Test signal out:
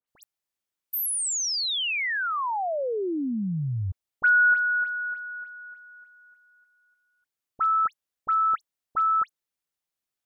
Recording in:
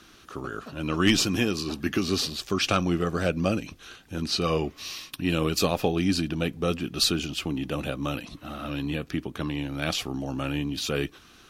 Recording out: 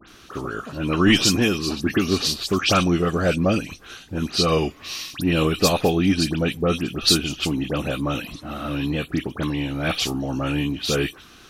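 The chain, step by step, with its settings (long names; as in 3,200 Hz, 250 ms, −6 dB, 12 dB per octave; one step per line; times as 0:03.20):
all-pass dispersion highs, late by 81 ms, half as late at 2,600 Hz
level +5.5 dB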